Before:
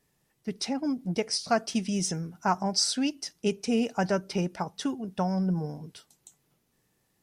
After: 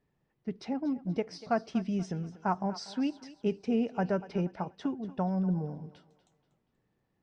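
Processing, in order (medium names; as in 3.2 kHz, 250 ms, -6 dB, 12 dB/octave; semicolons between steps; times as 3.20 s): tape spacing loss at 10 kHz 32 dB; thinning echo 240 ms, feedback 40%, high-pass 400 Hz, level -15 dB; trim -1.5 dB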